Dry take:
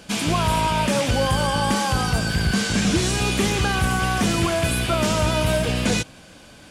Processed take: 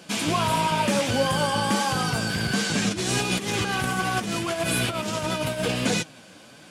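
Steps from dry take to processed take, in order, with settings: HPF 140 Hz 12 dB/oct; 2.89–5.71 negative-ratio compressor -24 dBFS, ratio -0.5; flange 1.5 Hz, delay 5.3 ms, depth 5.3 ms, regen +56%; gain +2.5 dB

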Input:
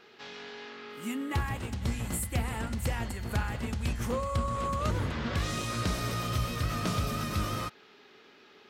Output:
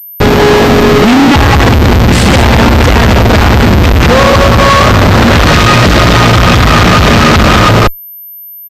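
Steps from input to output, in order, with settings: loudspeakers at several distances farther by 31 m -8 dB, 65 m -5 dB; Schmitt trigger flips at -39.5 dBFS; maximiser +35 dB; pulse-width modulation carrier 13000 Hz; gain -2 dB

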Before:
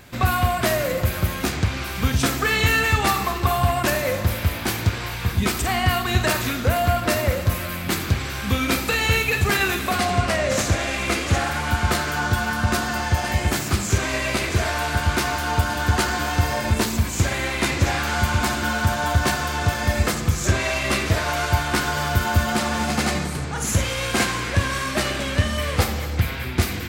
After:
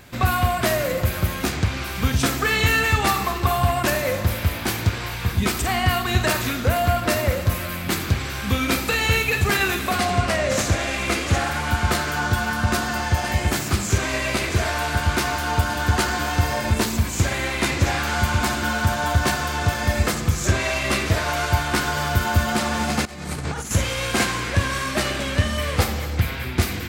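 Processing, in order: 23.05–23.71 negative-ratio compressor -29 dBFS, ratio -0.5

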